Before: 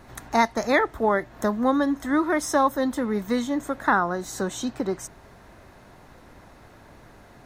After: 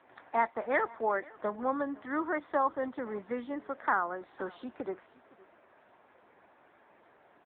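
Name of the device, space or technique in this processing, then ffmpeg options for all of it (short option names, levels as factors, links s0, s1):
satellite phone: -af "highpass=360,lowpass=3100,bandreject=f=6700:w=17,aecho=1:1:512:0.075,volume=0.473" -ar 8000 -c:a libopencore_amrnb -b:a 6700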